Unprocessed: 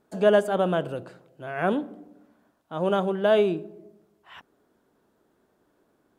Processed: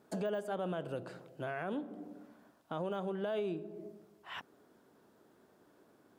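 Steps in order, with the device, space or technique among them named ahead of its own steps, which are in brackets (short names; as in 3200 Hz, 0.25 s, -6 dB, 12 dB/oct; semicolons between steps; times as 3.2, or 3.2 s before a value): broadcast voice chain (HPF 84 Hz; de-esser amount 85%; compressor 3:1, threshold -39 dBFS, peak gain reduction 18 dB; bell 5000 Hz +2 dB 0.33 oct; limiter -29.5 dBFS, peak gain reduction 5.5 dB); gain +2 dB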